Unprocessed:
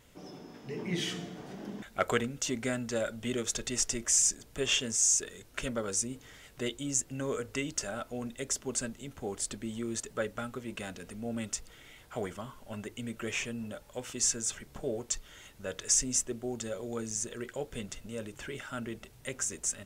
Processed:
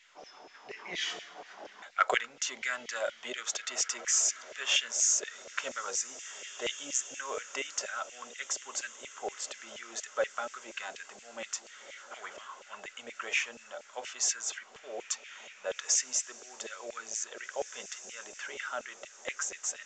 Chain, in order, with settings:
feedback delay with all-pass diffusion 1,997 ms, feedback 43%, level −15 dB
auto-filter high-pass saw down 4.2 Hz 540–2,400 Hz
mu-law 128 kbit/s 16,000 Hz

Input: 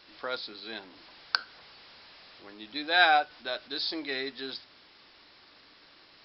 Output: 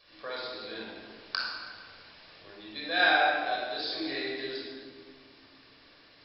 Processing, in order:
notch filter 1,300 Hz, Q 17
rectangular room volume 3,000 cubic metres, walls mixed, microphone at 5.8 metres
level −8.5 dB

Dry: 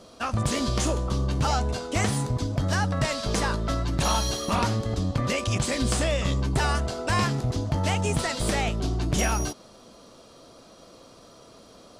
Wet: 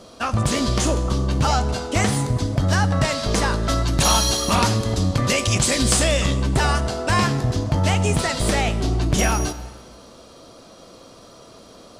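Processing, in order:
0:03.63–0:06.26: high-shelf EQ 3,600 Hz +7.5 dB
dense smooth reverb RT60 1.7 s, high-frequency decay 0.85×, DRR 13.5 dB
level +5 dB

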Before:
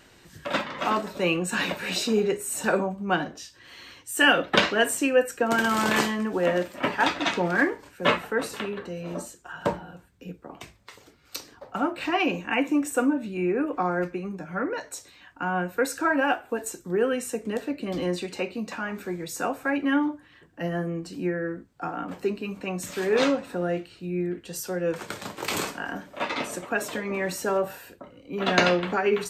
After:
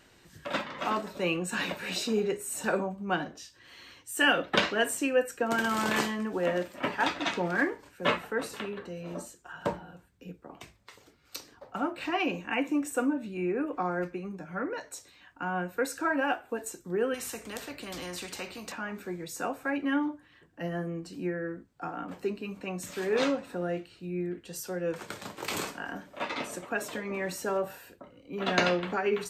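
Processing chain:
0:17.14–0:18.72: every bin compressed towards the loudest bin 2 to 1
level −5 dB

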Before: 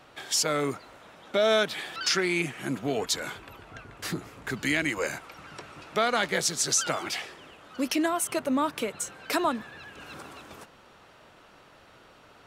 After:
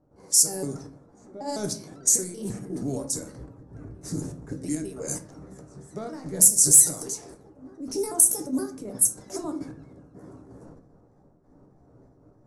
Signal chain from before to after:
pitch shifter gated in a rhythm +4.5 semitones, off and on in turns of 156 ms
gate pattern ".xxx.x.x..xx" 139 BPM −12 dB
transient designer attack −4 dB, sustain +9 dB
in parallel at +3 dB: downward compressor 4 to 1, threshold −37 dBFS, peak gain reduction 15 dB
on the sum: drawn EQ curve 270 Hz 0 dB, 3,100 Hz −29 dB, 5,800 Hz +4 dB, 8,900 Hz +11 dB, 14,000 Hz −1 dB
backwards echo 904 ms −19 dB
on a send at −5 dB: convolution reverb RT60 0.45 s, pre-delay 6 ms
on the sum: low-pass that shuts in the quiet parts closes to 1,100 Hz, open at −19.5 dBFS
gain into a clipping stage and back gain 8 dB
parametric band 11,000 Hz +13.5 dB 0.27 octaves
level −1.5 dB

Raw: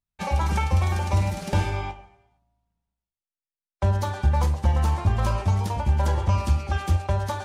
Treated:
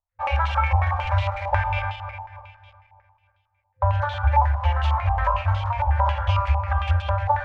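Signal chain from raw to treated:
feedback delay that plays each chunk backwards 151 ms, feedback 65%, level −10 dB
brick-wall band-stop 100–520 Hz
low-pass on a step sequencer 11 Hz 880–3,200 Hz

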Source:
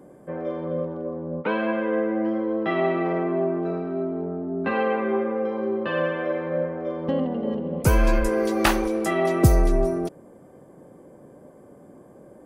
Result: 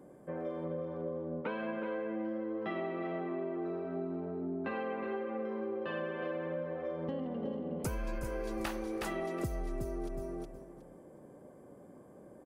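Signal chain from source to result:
repeating echo 366 ms, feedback 18%, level −8 dB
downward compressor 6 to 1, threshold −27 dBFS, peak gain reduction 16 dB
level −7 dB

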